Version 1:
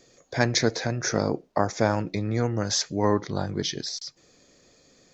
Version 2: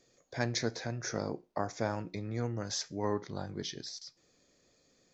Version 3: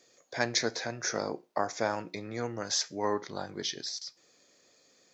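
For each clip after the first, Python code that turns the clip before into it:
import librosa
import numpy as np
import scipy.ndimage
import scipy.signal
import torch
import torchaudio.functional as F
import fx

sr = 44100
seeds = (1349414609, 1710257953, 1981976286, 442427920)

y1 = fx.comb_fb(x, sr, f0_hz=59.0, decay_s=0.28, harmonics='all', damping=0.0, mix_pct=40)
y1 = y1 * 10.0 ** (-8.0 / 20.0)
y2 = fx.highpass(y1, sr, hz=520.0, slope=6)
y2 = y2 * 10.0 ** (6.5 / 20.0)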